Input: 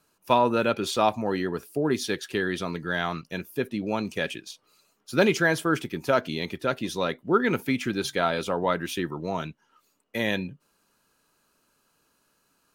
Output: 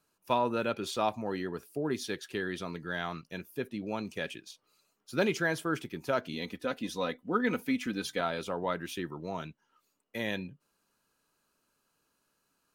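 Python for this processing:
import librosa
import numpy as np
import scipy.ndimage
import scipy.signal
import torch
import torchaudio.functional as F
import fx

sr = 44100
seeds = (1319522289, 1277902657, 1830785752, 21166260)

y = fx.comb(x, sr, ms=4.0, depth=0.62, at=(6.33, 8.21))
y = y * librosa.db_to_amplitude(-7.5)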